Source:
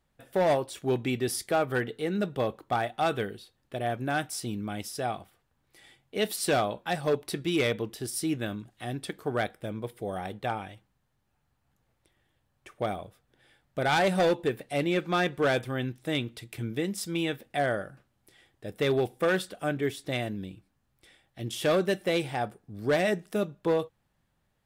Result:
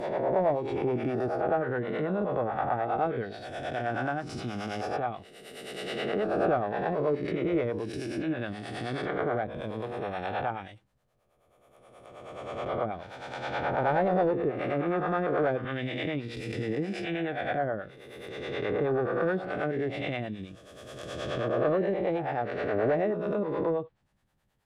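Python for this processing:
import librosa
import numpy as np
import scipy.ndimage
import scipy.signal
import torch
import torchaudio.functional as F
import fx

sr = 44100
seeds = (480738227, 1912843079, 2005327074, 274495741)

y = fx.spec_swells(x, sr, rise_s=2.06)
y = fx.env_lowpass_down(y, sr, base_hz=1100.0, full_db=-21.0)
y = fx.harmonic_tremolo(y, sr, hz=9.4, depth_pct=70, crossover_hz=440.0)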